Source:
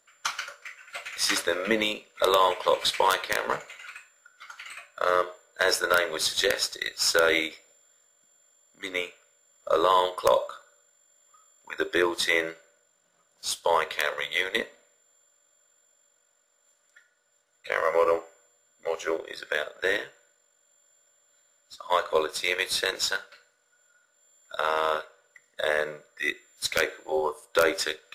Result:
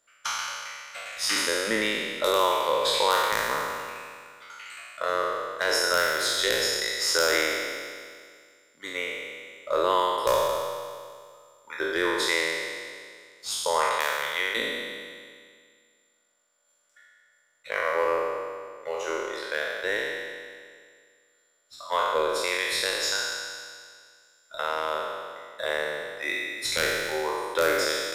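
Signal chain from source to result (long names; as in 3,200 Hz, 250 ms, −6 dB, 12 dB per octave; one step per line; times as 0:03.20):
peak hold with a decay on every bin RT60 2.02 s
level −5 dB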